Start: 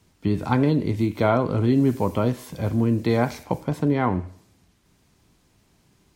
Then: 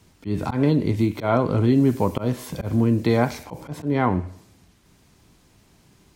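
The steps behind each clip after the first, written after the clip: slow attack 142 ms; in parallel at -2 dB: compression, threshold -29 dBFS, peak gain reduction 13.5 dB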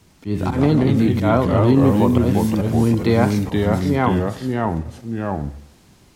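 ever faster or slower copies 101 ms, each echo -2 st, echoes 2; trim +2.5 dB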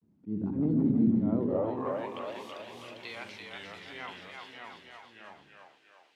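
band-pass sweep 220 Hz -> 2.8 kHz, 1.26–2.17 s; two-band feedback delay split 370 Hz, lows 88 ms, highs 335 ms, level -4 dB; vibrato 0.47 Hz 72 cents; trim -7.5 dB

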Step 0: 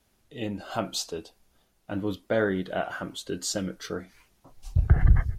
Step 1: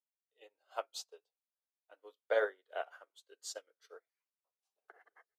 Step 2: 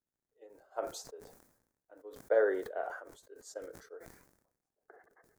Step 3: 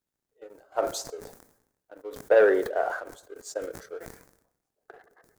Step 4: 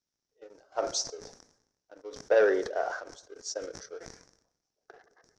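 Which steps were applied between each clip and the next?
elliptic high-pass 440 Hz, stop band 70 dB; upward expansion 2.5:1, over -46 dBFS; trim -2 dB
crackle 59 per s -68 dBFS; FFT filter 300 Hz 0 dB, 1.2 kHz -13 dB, 1.7 kHz -11 dB, 2.9 kHz -28 dB, 6.5 kHz -15 dB; decay stretcher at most 66 dB/s; trim +9 dB
waveshaping leveller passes 1; on a send at -23 dB: reverberation RT60 0.75 s, pre-delay 105 ms; on the sum: trim +7 dB
four-pole ladder low-pass 6 kHz, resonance 75%; trim +8 dB

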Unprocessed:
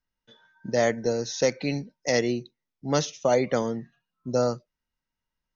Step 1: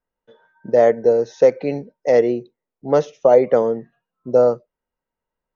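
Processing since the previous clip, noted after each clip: FFT filter 110 Hz 0 dB, 310 Hz +5 dB, 450 Hz +14 dB, 2.8 kHz -3 dB, 4.5 kHz -10 dB; trim -1.5 dB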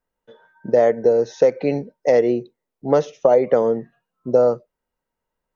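compression 2.5:1, threshold -16 dBFS, peak gain reduction 6.5 dB; trim +3 dB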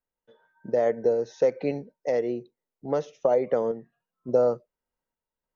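random-step tremolo; trim -6 dB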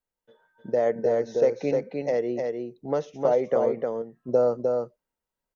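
delay 305 ms -4 dB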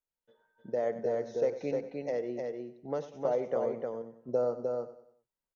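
feedback delay 96 ms, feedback 42%, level -14 dB; trim -8 dB

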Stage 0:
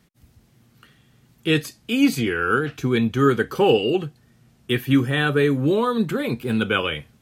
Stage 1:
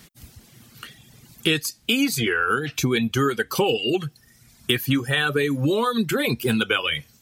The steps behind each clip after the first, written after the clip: reverb removal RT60 0.95 s; treble shelf 2.1 kHz +10 dB; compression 6:1, threshold -27 dBFS, peak gain reduction 15 dB; trim +8 dB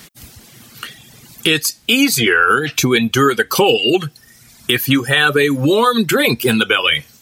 bass shelf 220 Hz -7.5 dB; loudness maximiser +11 dB; trim -1 dB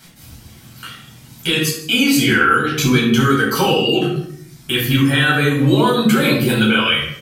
echo from a far wall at 27 m, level -16 dB; simulated room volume 960 m³, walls furnished, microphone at 7.9 m; trim -10.5 dB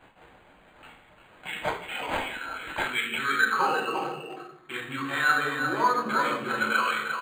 speakerphone echo 350 ms, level -6 dB; band-pass sweep 6.6 kHz -> 1.2 kHz, 2.50–3.64 s; decimation joined by straight lines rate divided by 8×

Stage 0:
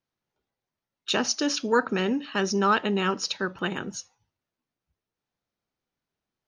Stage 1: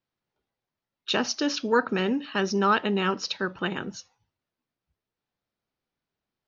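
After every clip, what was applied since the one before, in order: low-pass 5.5 kHz 24 dB/octave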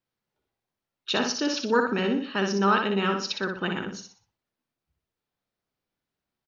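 feedback delay 61 ms, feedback 35%, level -5 dB; trim -1 dB

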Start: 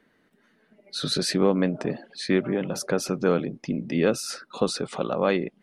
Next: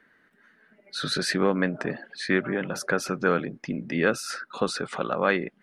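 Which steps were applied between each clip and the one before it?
peaking EQ 1.6 kHz +12 dB 0.94 oct; trim -3 dB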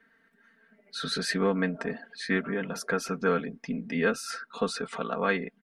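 comb 4.4 ms, depth 82%; trim -5.5 dB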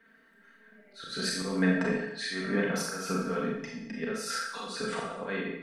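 slow attack 261 ms; Schroeder reverb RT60 0.75 s, combs from 29 ms, DRR -2.5 dB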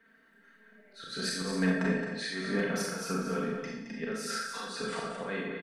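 hard clipper -18 dBFS, distortion -25 dB; on a send: delay 219 ms -8 dB; on the sum: trim -2 dB

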